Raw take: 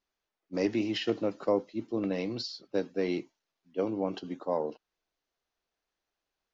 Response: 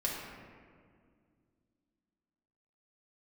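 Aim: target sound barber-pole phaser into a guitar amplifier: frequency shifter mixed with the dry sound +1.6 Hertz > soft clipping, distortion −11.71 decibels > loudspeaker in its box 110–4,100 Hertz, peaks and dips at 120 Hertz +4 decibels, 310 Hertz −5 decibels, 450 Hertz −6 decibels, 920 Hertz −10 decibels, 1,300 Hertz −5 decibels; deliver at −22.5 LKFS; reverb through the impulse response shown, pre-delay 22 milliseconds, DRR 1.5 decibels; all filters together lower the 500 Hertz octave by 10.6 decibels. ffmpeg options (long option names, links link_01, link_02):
-filter_complex "[0:a]equalizer=frequency=500:width_type=o:gain=-8,asplit=2[link_01][link_02];[1:a]atrim=start_sample=2205,adelay=22[link_03];[link_02][link_03]afir=irnorm=-1:irlink=0,volume=-6.5dB[link_04];[link_01][link_04]amix=inputs=2:normalize=0,asplit=2[link_05][link_06];[link_06]afreqshift=1.6[link_07];[link_05][link_07]amix=inputs=2:normalize=1,asoftclip=threshold=-32.5dB,highpass=110,equalizer=frequency=120:width_type=q:width=4:gain=4,equalizer=frequency=310:width_type=q:width=4:gain=-5,equalizer=frequency=450:width_type=q:width=4:gain=-6,equalizer=frequency=920:width_type=q:width=4:gain=-10,equalizer=frequency=1300:width_type=q:width=4:gain=-5,lowpass=frequency=4100:width=0.5412,lowpass=frequency=4100:width=1.3066,volume=20.5dB"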